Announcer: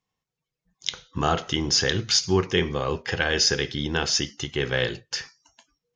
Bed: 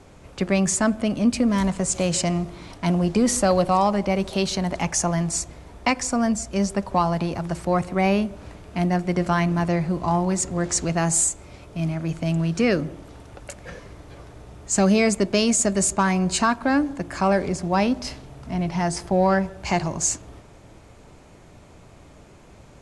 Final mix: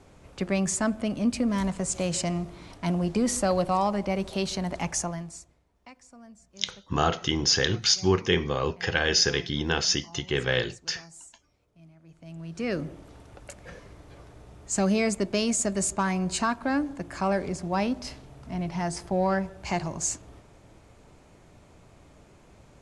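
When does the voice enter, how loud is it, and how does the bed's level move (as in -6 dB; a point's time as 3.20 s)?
5.75 s, -1.0 dB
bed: 4.97 s -5.5 dB
5.68 s -28 dB
12.01 s -28 dB
12.81 s -6 dB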